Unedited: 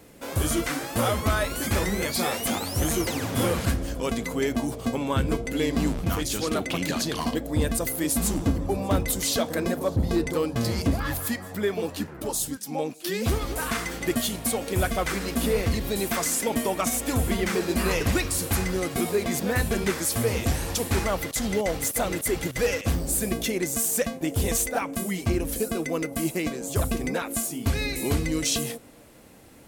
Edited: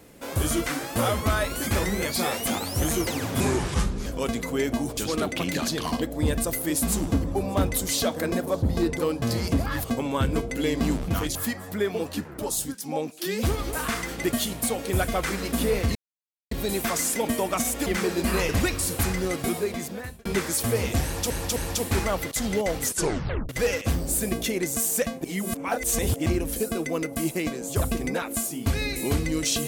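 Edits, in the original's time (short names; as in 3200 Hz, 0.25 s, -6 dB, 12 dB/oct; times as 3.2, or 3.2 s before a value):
3.4–3.89 speed 74%
4.8–6.31 move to 11.18
15.78 insert silence 0.56 s
17.13–17.38 cut
18.95–19.77 fade out
20.56–20.82 loop, 3 plays
21.82 tape stop 0.67 s
24.24–25.26 reverse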